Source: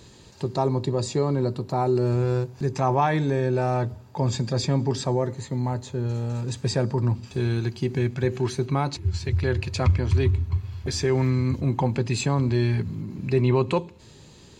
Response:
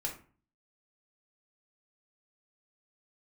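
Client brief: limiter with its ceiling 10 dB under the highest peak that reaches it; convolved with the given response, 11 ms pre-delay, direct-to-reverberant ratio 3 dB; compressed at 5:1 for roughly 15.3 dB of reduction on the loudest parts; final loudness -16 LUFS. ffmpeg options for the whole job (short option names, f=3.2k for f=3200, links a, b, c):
-filter_complex "[0:a]acompressor=threshold=-32dB:ratio=5,alimiter=level_in=6.5dB:limit=-24dB:level=0:latency=1,volume=-6.5dB,asplit=2[a][b];[1:a]atrim=start_sample=2205,adelay=11[c];[b][c]afir=irnorm=-1:irlink=0,volume=-5dB[d];[a][d]amix=inputs=2:normalize=0,volume=22dB"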